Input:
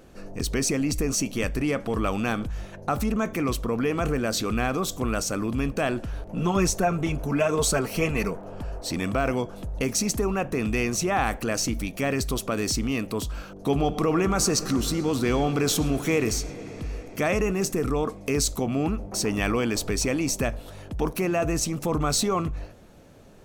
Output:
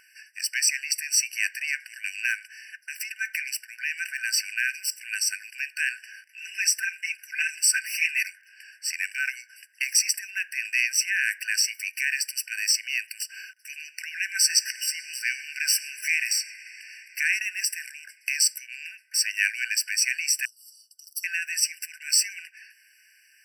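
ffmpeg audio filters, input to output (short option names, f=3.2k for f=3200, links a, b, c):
-filter_complex "[0:a]asettb=1/sr,asplit=3[a][b][c];[a]atrim=end=20.454[d];[b]atrim=start=20.45:end=21.24,asetpts=PTS-STARTPTS,afade=t=in:d=0.004:c=qsin,afade=t=out:st=0.786:d=0.004:c=qsin,asuperstop=centerf=2000:order=12:qfactor=0.87[e];[c]atrim=start=21.236[f];[d][e]acrossfade=d=0.004:c1=hsin:c2=qsin[g];[g][f]acrossfade=d=0.004:c1=qsin:c2=hsin,afftfilt=real='re*eq(mod(floor(b*sr/1024/1500),2),1)':imag='im*eq(mod(floor(b*sr/1024/1500),2),1)':win_size=1024:overlap=0.75,volume=7.5dB"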